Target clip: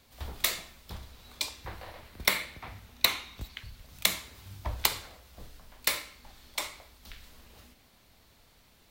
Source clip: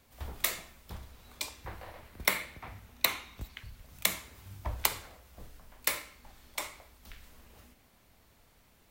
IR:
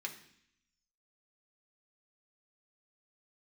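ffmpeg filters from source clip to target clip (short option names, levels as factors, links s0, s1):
-filter_complex "[0:a]asplit=2[s0][s1];[s1]aeval=exprs='clip(val(0),-1,0.0501)':c=same,volume=0.562[s2];[s0][s2]amix=inputs=2:normalize=0,equalizer=f=4100:t=o:w=0.97:g=6,volume=0.75"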